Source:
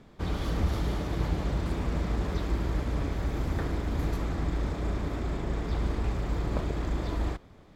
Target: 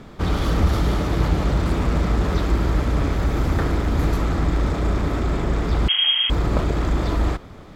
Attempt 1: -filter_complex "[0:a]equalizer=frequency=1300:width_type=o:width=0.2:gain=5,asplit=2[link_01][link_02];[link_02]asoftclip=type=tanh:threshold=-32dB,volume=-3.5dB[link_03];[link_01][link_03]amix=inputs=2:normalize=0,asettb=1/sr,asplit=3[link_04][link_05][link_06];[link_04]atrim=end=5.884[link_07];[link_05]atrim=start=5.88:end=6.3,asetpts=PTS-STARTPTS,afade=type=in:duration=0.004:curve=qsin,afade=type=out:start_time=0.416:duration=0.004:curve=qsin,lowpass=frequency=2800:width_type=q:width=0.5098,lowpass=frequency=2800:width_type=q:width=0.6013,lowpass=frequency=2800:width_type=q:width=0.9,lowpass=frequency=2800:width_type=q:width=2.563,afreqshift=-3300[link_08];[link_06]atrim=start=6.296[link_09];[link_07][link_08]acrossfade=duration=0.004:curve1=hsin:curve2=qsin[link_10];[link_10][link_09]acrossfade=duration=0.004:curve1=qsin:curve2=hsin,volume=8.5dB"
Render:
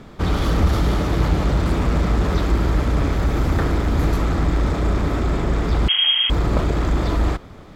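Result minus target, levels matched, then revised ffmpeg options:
soft clipping: distortion −4 dB
-filter_complex "[0:a]equalizer=frequency=1300:width_type=o:width=0.2:gain=5,asplit=2[link_01][link_02];[link_02]asoftclip=type=tanh:threshold=-42dB,volume=-3.5dB[link_03];[link_01][link_03]amix=inputs=2:normalize=0,asettb=1/sr,asplit=3[link_04][link_05][link_06];[link_04]atrim=end=5.884[link_07];[link_05]atrim=start=5.88:end=6.3,asetpts=PTS-STARTPTS,afade=type=in:duration=0.004:curve=qsin,afade=type=out:start_time=0.416:duration=0.004:curve=qsin,lowpass=frequency=2800:width_type=q:width=0.5098,lowpass=frequency=2800:width_type=q:width=0.6013,lowpass=frequency=2800:width_type=q:width=0.9,lowpass=frequency=2800:width_type=q:width=2.563,afreqshift=-3300[link_08];[link_06]atrim=start=6.296[link_09];[link_07][link_08]acrossfade=duration=0.004:curve1=hsin:curve2=qsin[link_10];[link_10][link_09]acrossfade=duration=0.004:curve1=qsin:curve2=hsin,volume=8.5dB"

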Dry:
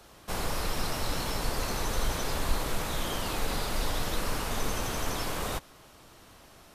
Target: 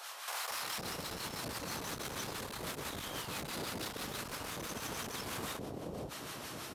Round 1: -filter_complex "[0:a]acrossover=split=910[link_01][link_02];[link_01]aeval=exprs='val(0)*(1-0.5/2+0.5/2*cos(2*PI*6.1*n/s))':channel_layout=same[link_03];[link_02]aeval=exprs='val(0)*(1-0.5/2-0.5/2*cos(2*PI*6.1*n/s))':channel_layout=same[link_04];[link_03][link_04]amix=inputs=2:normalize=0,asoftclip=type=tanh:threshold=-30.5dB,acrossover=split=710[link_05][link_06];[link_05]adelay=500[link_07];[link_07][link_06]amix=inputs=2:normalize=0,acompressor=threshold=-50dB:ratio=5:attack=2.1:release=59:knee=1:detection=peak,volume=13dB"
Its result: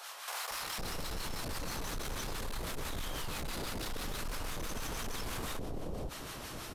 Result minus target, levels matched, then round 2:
125 Hz band +3.0 dB
-filter_complex "[0:a]acrossover=split=910[link_01][link_02];[link_01]aeval=exprs='val(0)*(1-0.5/2+0.5/2*cos(2*PI*6.1*n/s))':channel_layout=same[link_03];[link_02]aeval=exprs='val(0)*(1-0.5/2-0.5/2*cos(2*PI*6.1*n/s))':channel_layout=same[link_04];[link_03][link_04]amix=inputs=2:normalize=0,asoftclip=type=tanh:threshold=-30.5dB,acrossover=split=710[link_05][link_06];[link_05]adelay=500[link_07];[link_07][link_06]amix=inputs=2:normalize=0,acompressor=threshold=-50dB:ratio=5:attack=2.1:release=59:knee=1:detection=peak,highpass=110,volume=13dB"

